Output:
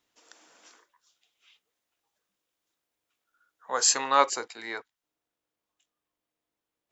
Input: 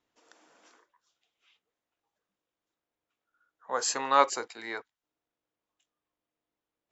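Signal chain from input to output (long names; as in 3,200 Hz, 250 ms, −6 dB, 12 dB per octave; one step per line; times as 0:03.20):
high-shelf EQ 2,200 Hz +9.5 dB, from 0:04.04 +3.5 dB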